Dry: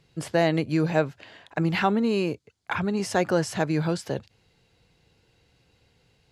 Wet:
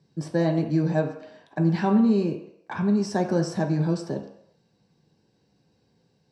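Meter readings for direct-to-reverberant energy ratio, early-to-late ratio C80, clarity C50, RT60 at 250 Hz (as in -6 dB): 1.5 dB, 11.0 dB, 9.0 dB, n/a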